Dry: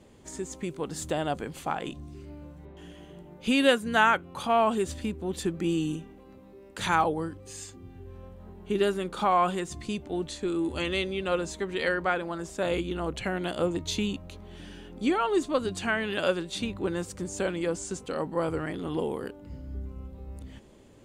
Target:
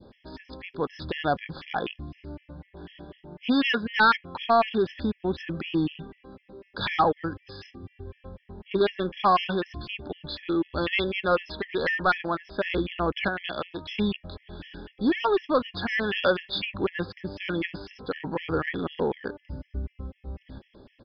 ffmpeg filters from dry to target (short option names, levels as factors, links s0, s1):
-filter_complex "[0:a]adynamicequalizer=threshold=0.00891:dfrequency=1600:dqfactor=0.7:tfrequency=1600:tqfactor=0.7:attack=5:release=100:ratio=0.375:range=3.5:mode=boostabove:tftype=bell,asettb=1/sr,asplit=3[s0][s1][s2];[s0]atrim=end=13.284[s3];[s1]atrim=start=13.28:end=13.98,asetpts=PTS-STARTPTS,afade=t=in:d=0.004:c=qsin,afade=t=out:st=0.696:d=0.004:c=qsin,acrossover=split=120|500|2200[s4][s5][s6][s7];[s4]acompressor=threshold=0.00178:ratio=4[s8];[s5]acompressor=threshold=0.00794:ratio=4[s9];[s6]acompressor=threshold=0.0178:ratio=4[s10];[s7]acompressor=threshold=0.02:ratio=4[s11];[s8][s9][s10][s11]amix=inputs=4:normalize=0[s12];[s2]atrim=start=13.976[s13];[s3][s12]acrossfade=d=0.004:c1=hsin:c2=qsin[s14];[s14][s13]acrossfade=d=0.004:c1=qsin:c2=hsin,asoftclip=type=tanh:threshold=0.112,aresample=11025,aresample=44100,afftfilt=real='re*gt(sin(2*PI*4*pts/sr)*(1-2*mod(floor(b*sr/1024/1700),2)),0)':imag='im*gt(sin(2*PI*4*pts/sr)*(1-2*mod(floor(b*sr/1024/1700),2)),0)':win_size=1024:overlap=0.75,volume=1.78"